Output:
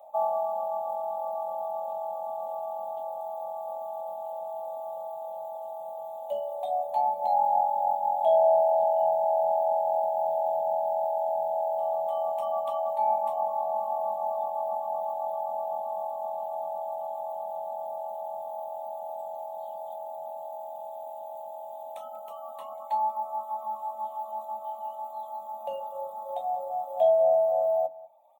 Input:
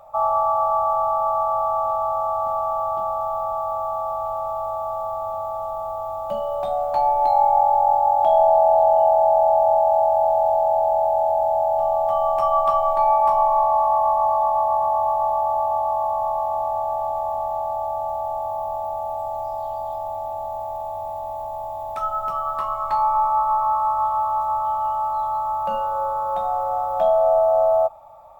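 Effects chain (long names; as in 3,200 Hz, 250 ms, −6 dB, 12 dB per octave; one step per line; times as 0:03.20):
sub-octave generator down 2 octaves, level −1 dB
high-pass filter 340 Hz 24 dB per octave
flat-topped bell 1,600 Hz −12.5 dB
phaser with its sweep stopped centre 1,400 Hz, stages 6
single-tap delay 191 ms −13.5 dB
reverb reduction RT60 1.7 s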